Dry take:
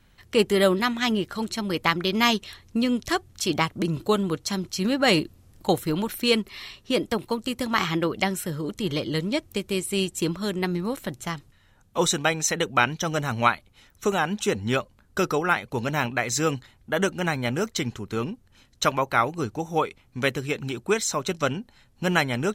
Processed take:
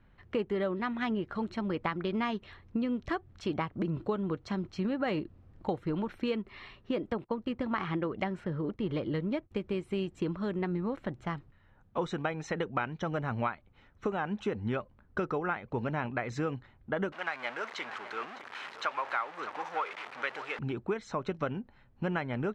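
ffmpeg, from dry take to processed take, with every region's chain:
-filter_complex "[0:a]asettb=1/sr,asplit=3[a][b][c];[a]atrim=end=7.244[d];[b]atrim=start=7.24:end=9.51,asetpts=PTS-STARTPTS,afade=t=in:d=0.004:c=qsin,afade=t=out:st=2.266:d=0.004:c=qsin,agate=range=-33dB:threshold=-40dB:ratio=3:release=100:detection=peak,adynamicsmooth=sensitivity=8:basefreq=4.2k[e];[c]atrim=start=9.506[f];[d][e]acrossfade=d=0.004:c1=hsin:c2=qsin[g];[g][f]acrossfade=d=0.004:c1=qsin:c2=hsin,asettb=1/sr,asplit=3[h][i][j];[h]atrim=end=17.124[k];[i]atrim=start=17.12:end=20.59,asetpts=PTS-STARTPTS,afade=t=in:d=0.004:c=qsin,afade=t=out:st=3.466:d=0.004:c=qsin,aeval=exprs='val(0)+0.5*0.0631*sgn(val(0))':c=same,highpass=1k,aecho=1:1:607:0.168,atrim=end_sample=153027[l];[j]atrim=start=20.586[m];[k][l]acrossfade=d=0.004:c1=hsin:c2=qsin[n];[n][m]acrossfade=d=0.004:c1=qsin:c2=hsin,lowpass=1.8k,acompressor=threshold=-26dB:ratio=5,volume=-2.5dB"

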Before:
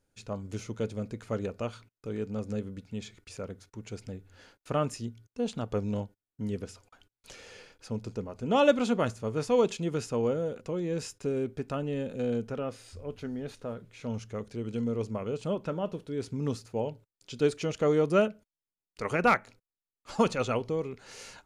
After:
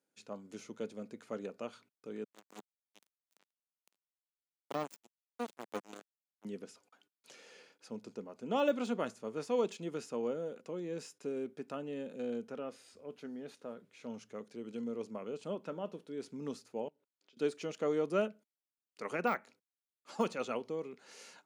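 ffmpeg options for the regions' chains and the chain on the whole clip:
-filter_complex "[0:a]asettb=1/sr,asplit=3[a][b][c];[a]atrim=end=2.244[d];[b]atrim=start=2.24:end=6.45,asetpts=PTS-STARTPTS,afade=t=in:d=0.004:c=qsin,afade=t=out:st=4.206:d=0.004:c=qsin,aemphasis=mode=production:type=75kf,acrusher=bits=3:mix=0:aa=0.5[e];[c]atrim=start=6.446[f];[d][e]acrossfade=d=0.004:c1=hsin:c2=qsin[g];[g][f]acrossfade=d=0.004:c1=qsin:c2=hsin,asettb=1/sr,asplit=3[h][i][j];[h]atrim=end=16.884[k];[i]atrim=start=16.88:end=17.37,asetpts=PTS-STARTPTS,afade=t=in:d=0.004:c=qsin,afade=t=out:st=0.486:d=0.004:c=qsin,acompressor=threshold=-55dB:ratio=5:attack=3.2:release=140:knee=1:detection=peak,highpass=250,lowpass=3.8k[l];[j]atrim=start=17.366[m];[k][l]acrossfade=d=0.004:c1=hsin:c2=qsin[n];[n][m]acrossfade=d=0.004:c1=qsin:c2=hsin,deesser=0.95,highpass=f=190:w=0.5412,highpass=f=190:w=1.3066,volume=-7.5dB"

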